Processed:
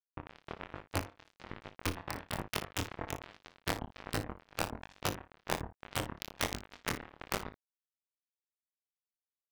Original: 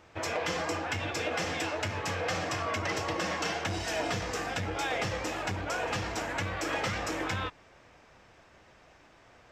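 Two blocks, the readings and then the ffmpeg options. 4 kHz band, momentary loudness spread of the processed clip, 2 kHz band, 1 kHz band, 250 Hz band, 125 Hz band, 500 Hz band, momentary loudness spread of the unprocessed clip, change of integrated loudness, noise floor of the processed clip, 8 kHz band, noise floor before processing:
-6.5 dB, 12 LU, -9.5 dB, -8.5 dB, -6.0 dB, -6.0 dB, -9.5 dB, 2 LU, -7.5 dB, under -85 dBFS, -5.5 dB, -59 dBFS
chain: -af "aemphasis=mode=reproduction:type=riaa,bandreject=f=73.57:t=h:w=4,bandreject=f=147.14:t=h:w=4,bandreject=f=220.71:t=h:w=4,bandreject=f=294.28:t=h:w=4,bandreject=f=367.85:t=h:w=4,bandreject=f=441.42:t=h:w=4,bandreject=f=514.99:t=h:w=4,bandreject=f=588.56:t=h:w=4,bandreject=f=662.13:t=h:w=4,bandreject=f=735.7:t=h:w=4,bandreject=f=809.27:t=h:w=4,bandreject=f=882.84:t=h:w=4,bandreject=f=956.41:t=h:w=4,bandreject=f=1.02998k:t=h:w=4,bandreject=f=1.10355k:t=h:w=4,bandreject=f=1.17712k:t=h:w=4,bandreject=f=1.25069k:t=h:w=4,bandreject=f=1.32426k:t=h:w=4,bandreject=f=1.39783k:t=h:w=4,bandreject=f=1.4714k:t=h:w=4,bandreject=f=1.54497k:t=h:w=4,bandreject=f=1.61854k:t=h:w=4,bandreject=f=1.69211k:t=h:w=4,bandreject=f=1.76568k:t=h:w=4,bandreject=f=1.83925k:t=h:w=4,bandreject=f=1.91282k:t=h:w=4,bandreject=f=1.98639k:t=h:w=4,bandreject=f=2.05996k:t=h:w=4,bandreject=f=2.13353k:t=h:w=4,bandreject=f=2.2071k:t=h:w=4,bandreject=f=2.28067k:t=h:w=4,bandreject=f=2.35424k:t=h:w=4,bandreject=f=2.42781k:t=h:w=4,bandreject=f=2.50138k:t=h:w=4,bandreject=f=2.57495k:t=h:w=4,bandreject=f=2.64852k:t=h:w=4,afftfilt=real='re*gte(hypot(re,im),0.0251)':imag='im*gte(hypot(re,im),0.0251)':win_size=1024:overlap=0.75,aecho=1:1:1.1:0.55,acompressor=threshold=-21dB:ratio=12,acrusher=bits=2:mix=0:aa=0.5,aeval=exprs='(mod(14.1*val(0)+1,2)-1)/14.1':c=same,flanger=delay=19.5:depth=6.7:speed=1.2,aecho=1:1:37|57:0.158|0.211,volume=6.5dB"

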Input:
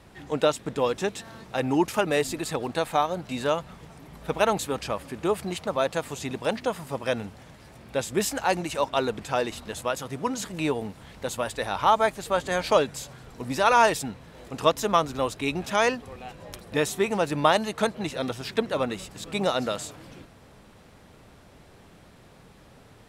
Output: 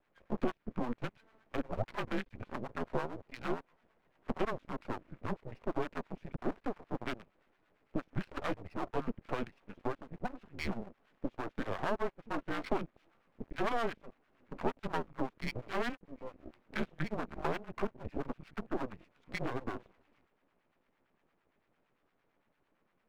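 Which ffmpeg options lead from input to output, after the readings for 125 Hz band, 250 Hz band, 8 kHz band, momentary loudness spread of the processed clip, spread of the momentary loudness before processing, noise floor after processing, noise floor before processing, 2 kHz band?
-8.5 dB, -9.0 dB, -27.0 dB, 8 LU, 13 LU, -77 dBFS, -52 dBFS, -12.5 dB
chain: -filter_complex "[0:a]highpass=f=410:t=q:w=0.5412,highpass=f=410:t=q:w=1.307,lowpass=f=2.8k:t=q:w=0.5176,lowpass=f=2.8k:t=q:w=0.7071,lowpass=f=2.8k:t=q:w=1.932,afreqshift=-240,afwtdn=0.0178,acompressor=threshold=-32dB:ratio=2.5,aeval=exprs='max(val(0),0)':c=same,acrossover=split=900[a][b];[a]aeval=exprs='val(0)*(1-0.7/2+0.7/2*cos(2*PI*8.8*n/s))':c=same[c];[b]aeval=exprs='val(0)*(1-0.7/2-0.7/2*cos(2*PI*8.8*n/s))':c=same[d];[c][d]amix=inputs=2:normalize=0,volume=4dB"

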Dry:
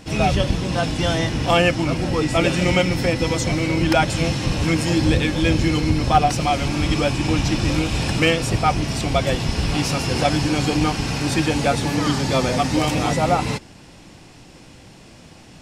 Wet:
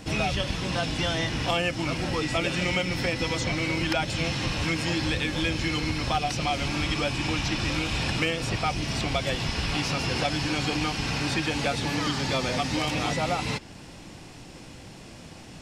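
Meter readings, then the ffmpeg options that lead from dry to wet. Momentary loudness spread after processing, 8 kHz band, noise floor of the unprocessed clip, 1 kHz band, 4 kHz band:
18 LU, -6.5 dB, -45 dBFS, -8.5 dB, -3.0 dB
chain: -filter_complex "[0:a]acrossover=split=900|2100|5300[a][b][c][d];[a]acompressor=threshold=-28dB:ratio=4[e];[b]acompressor=threshold=-35dB:ratio=4[f];[c]acompressor=threshold=-30dB:ratio=4[g];[d]acompressor=threshold=-47dB:ratio=4[h];[e][f][g][h]amix=inputs=4:normalize=0"

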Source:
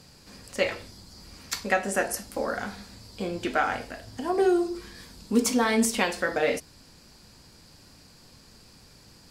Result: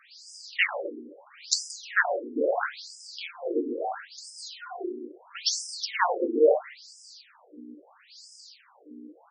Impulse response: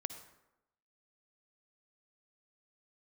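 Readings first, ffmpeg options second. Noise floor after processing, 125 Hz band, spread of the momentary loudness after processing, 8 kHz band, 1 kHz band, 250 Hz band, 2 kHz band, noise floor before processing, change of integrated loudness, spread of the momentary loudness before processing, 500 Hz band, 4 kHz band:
-59 dBFS, under -25 dB, 22 LU, -1.5 dB, -2.0 dB, -7.0 dB, 0.0 dB, -54 dBFS, -1.0 dB, 21 LU, 0.0 dB, +3.0 dB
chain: -filter_complex "[0:a]aeval=exprs='val(0)+0.0126*(sin(2*PI*60*n/s)+sin(2*PI*2*60*n/s)/2+sin(2*PI*3*60*n/s)/3+sin(2*PI*4*60*n/s)/4+sin(2*PI*5*60*n/s)/5)':c=same,equalizer=f=13k:w=0.91:g=5,asplit=2[a][b];[b]adelay=129,lowpass=f=950:p=1,volume=-9.5dB,asplit=2[c][d];[d]adelay=129,lowpass=f=950:p=1,volume=0.48,asplit=2[e][f];[f]adelay=129,lowpass=f=950:p=1,volume=0.48,asplit=2[g][h];[h]adelay=129,lowpass=f=950:p=1,volume=0.48,asplit=2[i][j];[j]adelay=129,lowpass=f=950:p=1,volume=0.48[k];[a][c][e][g][i][k]amix=inputs=6:normalize=0,asplit=2[l][m];[1:a]atrim=start_sample=2205,asetrate=48510,aresample=44100[n];[m][n]afir=irnorm=-1:irlink=0,volume=6.5dB[o];[l][o]amix=inputs=2:normalize=0,afftfilt=real='re*between(b*sr/1024,320*pow(7000/320,0.5+0.5*sin(2*PI*0.75*pts/sr))/1.41,320*pow(7000/320,0.5+0.5*sin(2*PI*0.75*pts/sr))*1.41)':imag='im*between(b*sr/1024,320*pow(7000/320,0.5+0.5*sin(2*PI*0.75*pts/sr))/1.41,320*pow(7000/320,0.5+0.5*sin(2*PI*0.75*pts/sr))*1.41)':win_size=1024:overlap=0.75"

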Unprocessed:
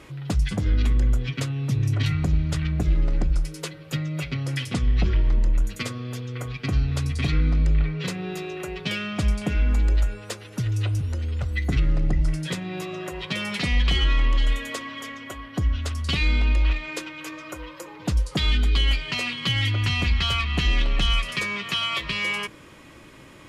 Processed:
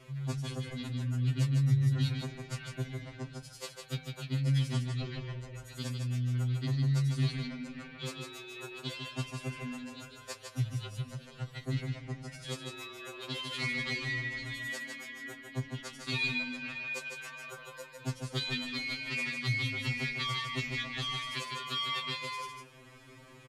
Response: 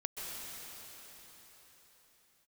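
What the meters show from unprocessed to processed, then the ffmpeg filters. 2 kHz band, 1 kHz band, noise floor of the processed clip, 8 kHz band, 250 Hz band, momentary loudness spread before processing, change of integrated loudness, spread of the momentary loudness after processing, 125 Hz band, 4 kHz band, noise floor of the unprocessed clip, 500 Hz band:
-7.0 dB, -8.0 dB, -54 dBFS, -7.5 dB, -8.5 dB, 11 LU, -10.0 dB, 13 LU, -8.0 dB, -9.5 dB, -45 dBFS, -9.5 dB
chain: -af "aecho=1:1:153:0.562,afftfilt=real='re*2.45*eq(mod(b,6),0)':imag='im*2.45*eq(mod(b,6),0)':win_size=2048:overlap=0.75,volume=-6dB"

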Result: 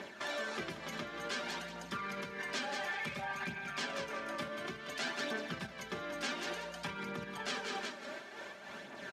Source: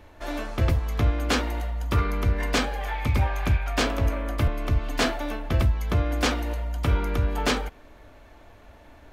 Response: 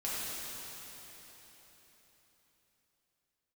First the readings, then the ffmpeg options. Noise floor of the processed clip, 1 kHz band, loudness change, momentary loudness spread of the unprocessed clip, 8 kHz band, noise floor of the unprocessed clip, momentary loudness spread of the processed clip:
-50 dBFS, -10.0 dB, -13.5 dB, 6 LU, -10.0 dB, -50 dBFS, 6 LU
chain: -filter_complex "[0:a]lowpass=6.6k,highshelf=f=2.2k:g=9,aecho=1:1:183|366|549:0.237|0.0545|0.0125,acompressor=threshold=-31dB:ratio=6,aecho=1:1:5.1:0.65,asplit=2[a][b];[1:a]atrim=start_sample=2205,asetrate=66150,aresample=44100[c];[b][c]afir=irnorm=-1:irlink=0,volume=-16.5dB[d];[a][d]amix=inputs=2:normalize=0,aphaser=in_gain=1:out_gain=1:delay=3.7:decay=0.39:speed=0.56:type=triangular,tremolo=f=3.2:d=0.49,alimiter=level_in=6.5dB:limit=-24dB:level=0:latency=1:release=35,volume=-6.5dB,highpass=f=150:w=0.5412,highpass=f=150:w=1.3066,equalizer=f=1.6k:w=6.9:g=6.5,volume=2.5dB"

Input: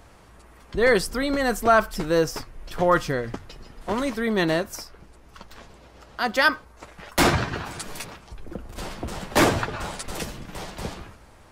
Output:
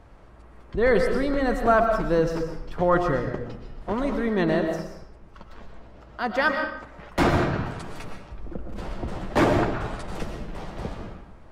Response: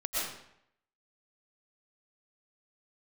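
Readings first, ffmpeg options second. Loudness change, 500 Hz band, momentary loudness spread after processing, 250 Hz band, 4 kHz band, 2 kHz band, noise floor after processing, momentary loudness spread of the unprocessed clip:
-1.0 dB, +0.5 dB, 18 LU, +1.0 dB, -8.5 dB, -3.5 dB, -48 dBFS, 19 LU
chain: -filter_complex "[0:a]lowpass=f=1.6k:p=1,asplit=2[a][b];[1:a]atrim=start_sample=2205,lowshelf=f=380:g=6.5[c];[b][c]afir=irnorm=-1:irlink=0,volume=-9dB[d];[a][d]amix=inputs=2:normalize=0,volume=-3.5dB"

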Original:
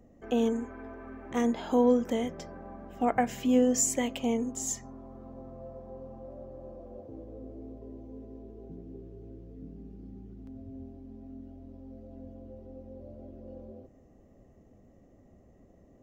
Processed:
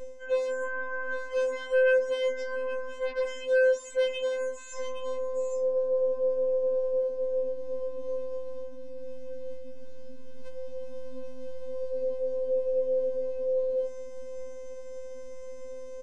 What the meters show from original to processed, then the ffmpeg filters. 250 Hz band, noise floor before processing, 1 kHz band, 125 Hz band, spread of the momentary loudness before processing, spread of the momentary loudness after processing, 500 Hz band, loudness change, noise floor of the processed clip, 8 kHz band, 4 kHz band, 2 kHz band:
-21.5 dB, -59 dBFS, -7.0 dB, n/a, 22 LU, 17 LU, +8.0 dB, -1.0 dB, -39 dBFS, under -10 dB, +2.5 dB, +11.5 dB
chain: -filter_complex "[0:a]afftfilt=real='hypot(re,im)*cos(PI*b)':imag='0':win_size=1024:overlap=0.75,asplit=2[a][b];[b]aeval=exprs='0.251*sin(PI/2*7.08*val(0)/0.251)':c=same,volume=-11dB[c];[a][c]amix=inputs=2:normalize=0,equalizer=f=80:t=o:w=0.33:g=13,aresample=22050,aresample=44100,aecho=1:1:816:0.0891,areverse,acompressor=threshold=-38dB:ratio=12,areverse,highshelf=f=3k:g=3,bandreject=f=206.4:t=h:w=4,bandreject=f=412.8:t=h:w=4,bandreject=f=619.2:t=h:w=4,bandreject=f=825.6:t=h:w=4,bandreject=f=1.032k:t=h:w=4,bandreject=f=1.2384k:t=h:w=4,bandreject=f=1.4448k:t=h:w=4,bandreject=f=1.6512k:t=h:w=4,bandreject=f=1.8576k:t=h:w=4,bandreject=f=2.064k:t=h:w=4,acrossover=split=3000[d][e];[e]acompressor=threshold=-60dB:ratio=4:attack=1:release=60[f];[d][f]amix=inputs=2:normalize=0,afftfilt=real='re*3.46*eq(mod(b,12),0)':imag='im*3.46*eq(mod(b,12),0)':win_size=2048:overlap=0.75,volume=8.5dB"

